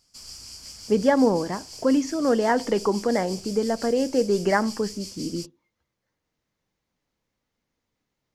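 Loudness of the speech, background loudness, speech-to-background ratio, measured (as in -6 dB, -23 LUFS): -24.0 LUFS, -38.5 LUFS, 14.5 dB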